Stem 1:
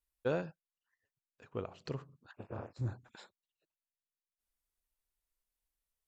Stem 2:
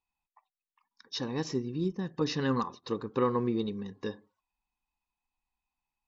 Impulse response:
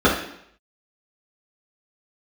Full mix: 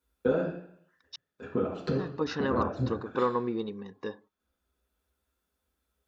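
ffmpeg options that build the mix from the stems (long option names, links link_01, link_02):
-filter_complex "[0:a]acompressor=threshold=-41dB:ratio=10,volume=1.5dB,asplit=2[link_01][link_02];[link_02]volume=-10.5dB[link_03];[1:a]agate=range=-18dB:threshold=-54dB:ratio=16:detection=peak,equalizer=frequency=890:width=0.3:gain=11,volume=-8.5dB,asplit=3[link_04][link_05][link_06];[link_04]atrim=end=1.16,asetpts=PTS-STARTPTS,afade=type=out:start_time=1.156:duration=0.004:curve=hsin[link_07];[link_05]atrim=start=1.16:end=1.89,asetpts=PTS-STARTPTS,volume=0[link_08];[link_06]atrim=start=1.89,asetpts=PTS-STARTPTS,afade=type=in:duration=0.004:curve=hsin[link_09];[link_07][link_08][link_09]concat=n=3:v=0:a=1,asplit=2[link_10][link_11];[link_11]apad=whole_len=268066[link_12];[link_01][link_12]sidechaincompress=threshold=-48dB:ratio=8:attack=16:release=773[link_13];[2:a]atrim=start_sample=2205[link_14];[link_03][link_14]afir=irnorm=-1:irlink=0[link_15];[link_13][link_10][link_15]amix=inputs=3:normalize=0"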